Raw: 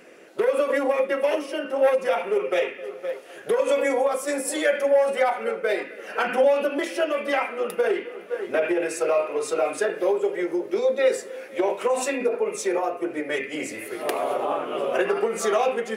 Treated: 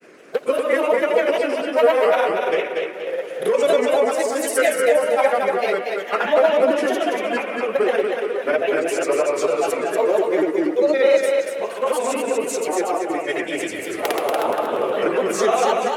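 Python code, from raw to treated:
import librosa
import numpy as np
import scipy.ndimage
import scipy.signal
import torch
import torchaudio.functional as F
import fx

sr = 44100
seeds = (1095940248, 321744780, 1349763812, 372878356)

p1 = fx.granulator(x, sr, seeds[0], grain_ms=100.0, per_s=20.0, spray_ms=100.0, spread_st=3)
p2 = p1 + fx.echo_feedback(p1, sr, ms=237, feedback_pct=36, wet_db=-4.0, dry=0)
y = p2 * librosa.db_to_amplitude(4.0)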